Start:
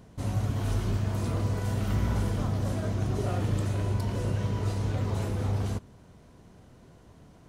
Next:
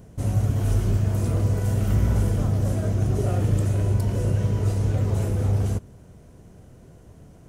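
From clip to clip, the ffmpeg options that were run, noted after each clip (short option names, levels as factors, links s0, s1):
-af "equalizer=f=250:t=o:w=1:g=-4,equalizer=f=1000:t=o:w=1:g=-8,equalizer=f=2000:t=o:w=1:g=-4,equalizer=f=4000:t=o:w=1:g=-9,volume=2.37"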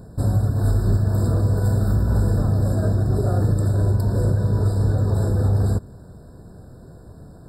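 -af "alimiter=limit=0.158:level=0:latency=1:release=222,afftfilt=real='re*eq(mod(floor(b*sr/1024/1800),2),0)':imag='im*eq(mod(floor(b*sr/1024/1800),2),0)':win_size=1024:overlap=0.75,volume=1.88"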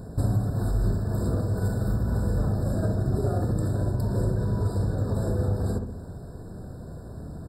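-filter_complex "[0:a]acompressor=threshold=0.0708:ratio=6,asplit=2[s0][s1];[s1]adelay=64,lowpass=f=1300:p=1,volume=0.631,asplit=2[s2][s3];[s3]adelay=64,lowpass=f=1300:p=1,volume=0.48,asplit=2[s4][s5];[s5]adelay=64,lowpass=f=1300:p=1,volume=0.48,asplit=2[s6][s7];[s7]adelay=64,lowpass=f=1300:p=1,volume=0.48,asplit=2[s8][s9];[s9]adelay=64,lowpass=f=1300:p=1,volume=0.48,asplit=2[s10][s11];[s11]adelay=64,lowpass=f=1300:p=1,volume=0.48[s12];[s0][s2][s4][s6][s8][s10][s12]amix=inputs=7:normalize=0,volume=1.19"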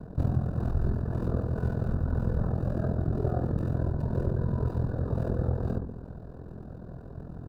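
-filter_complex "[0:a]aeval=exprs='val(0)*sin(2*PI*21*n/s)':c=same,acrossover=split=360|770|3300[s0][s1][s2][s3];[s3]acrusher=samples=41:mix=1:aa=0.000001[s4];[s0][s1][s2][s4]amix=inputs=4:normalize=0"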